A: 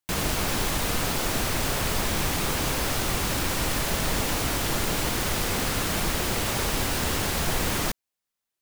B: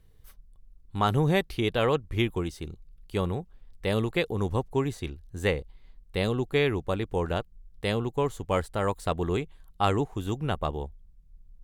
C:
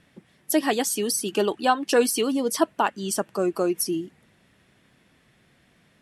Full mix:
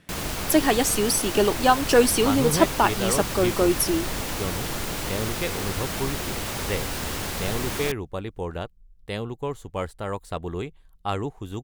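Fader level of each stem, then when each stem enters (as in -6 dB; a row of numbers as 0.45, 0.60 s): -3.5, -3.0, +2.5 dB; 0.00, 1.25, 0.00 s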